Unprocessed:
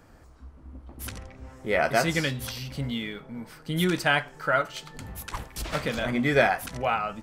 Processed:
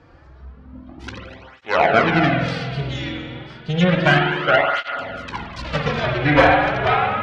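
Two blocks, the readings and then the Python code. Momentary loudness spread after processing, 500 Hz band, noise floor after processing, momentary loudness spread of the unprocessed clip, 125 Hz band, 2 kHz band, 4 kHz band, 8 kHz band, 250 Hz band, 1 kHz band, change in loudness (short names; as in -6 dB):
19 LU, +8.0 dB, -45 dBFS, 17 LU, +10.0 dB, +8.0 dB, +6.5 dB, n/a, +8.0 dB, +10.0 dB, +8.5 dB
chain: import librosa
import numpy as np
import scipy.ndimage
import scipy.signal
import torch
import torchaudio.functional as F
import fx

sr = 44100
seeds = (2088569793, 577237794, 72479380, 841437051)

p1 = scipy.signal.sosfilt(scipy.signal.butter(4, 4700.0, 'lowpass', fs=sr, output='sos'), x)
p2 = fx.cheby_harmonics(p1, sr, harmonics=(6, 8), levels_db=(-7, -18), full_scale_db=-7.5)
p3 = fx.env_lowpass_down(p2, sr, base_hz=2600.0, full_db=-19.0)
p4 = p3 + fx.echo_single(p3, sr, ms=246, db=-17.0, dry=0)
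p5 = fx.rev_spring(p4, sr, rt60_s=1.9, pass_ms=(47,), chirp_ms=30, drr_db=1.0)
p6 = fx.flanger_cancel(p5, sr, hz=0.31, depth_ms=5.0)
y = F.gain(torch.from_numpy(p6), 7.5).numpy()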